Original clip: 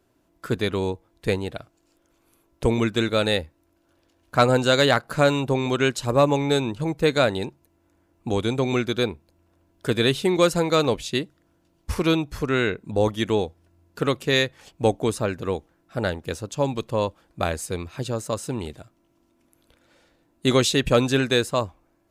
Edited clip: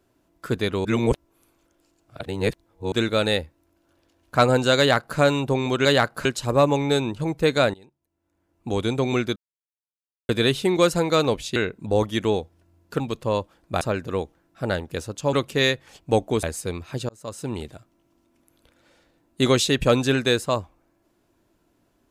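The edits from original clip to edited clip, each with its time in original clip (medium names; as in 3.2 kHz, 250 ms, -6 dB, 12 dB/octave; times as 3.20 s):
0.85–2.92 s: reverse
4.78–5.18 s: copy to 5.85 s
7.34–8.42 s: fade in quadratic, from -22.5 dB
8.96–9.89 s: mute
11.16–12.61 s: delete
14.05–15.15 s: swap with 16.67–17.48 s
18.14–18.58 s: fade in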